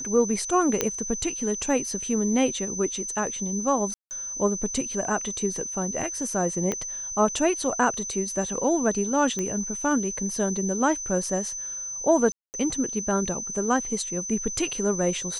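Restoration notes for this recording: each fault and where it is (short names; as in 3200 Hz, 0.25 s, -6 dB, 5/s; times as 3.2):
tone 6100 Hz -31 dBFS
0.81 pop -7 dBFS
3.94–4.11 gap 0.169 s
6.72 pop -13 dBFS
9.39 pop -16 dBFS
12.32–12.54 gap 0.219 s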